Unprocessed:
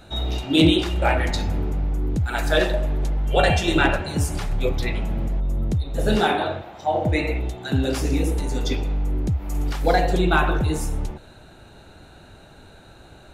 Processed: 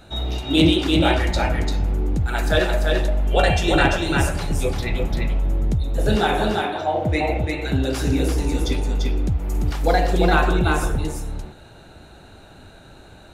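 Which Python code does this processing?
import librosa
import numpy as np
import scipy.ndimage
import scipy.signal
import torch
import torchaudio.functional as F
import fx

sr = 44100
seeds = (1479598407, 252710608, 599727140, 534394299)

y = x + 10.0 ** (-3.5 / 20.0) * np.pad(x, (int(343 * sr / 1000.0), 0))[:len(x)]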